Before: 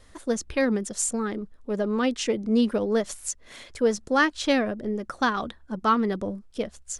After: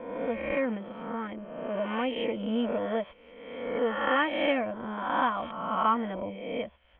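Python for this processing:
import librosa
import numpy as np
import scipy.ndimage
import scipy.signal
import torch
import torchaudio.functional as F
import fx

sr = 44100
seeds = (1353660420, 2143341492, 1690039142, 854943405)

y = fx.spec_swells(x, sr, rise_s=1.21)
y = scipy.signal.sosfilt(scipy.signal.cheby1(6, 9, 3300.0, 'lowpass', fs=sr, output='sos'), y)
y = fx.notch_comb(y, sr, f0_hz=410.0)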